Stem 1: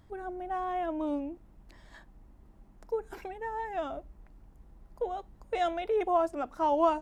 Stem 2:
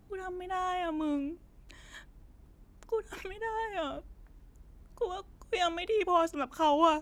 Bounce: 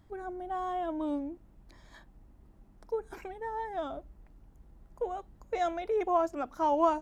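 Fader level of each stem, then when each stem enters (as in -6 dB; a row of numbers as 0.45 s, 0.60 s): -3.0 dB, -11.5 dB; 0.00 s, 0.00 s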